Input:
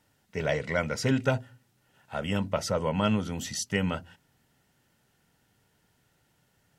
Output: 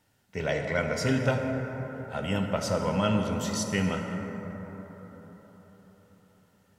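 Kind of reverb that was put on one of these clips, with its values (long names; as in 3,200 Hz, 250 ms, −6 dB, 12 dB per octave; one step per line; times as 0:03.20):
dense smooth reverb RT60 4.8 s, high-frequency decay 0.3×, DRR 2.5 dB
level −1 dB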